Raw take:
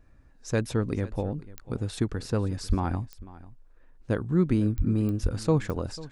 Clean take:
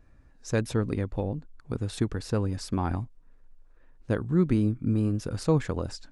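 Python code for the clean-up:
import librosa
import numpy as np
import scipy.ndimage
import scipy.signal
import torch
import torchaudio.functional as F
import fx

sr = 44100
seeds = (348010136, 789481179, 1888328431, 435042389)

y = fx.fix_declick_ar(x, sr, threshold=10.0)
y = fx.highpass(y, sr, hz=140.0, slope=24, at=(2.68, 2.8), fade=0.02)
y = fx.highpass(y, sr, hz=140.0, slope=24, at=(4.77, 4.89), fade=0.02)
y = fx.highpass(y, sr, hz=140.0, slope=24, at=(5.22, 5.34), fade=0.02)
y = fx.fix_echo_inverse(y, sr, delay_ms=494, level_db=-19.0)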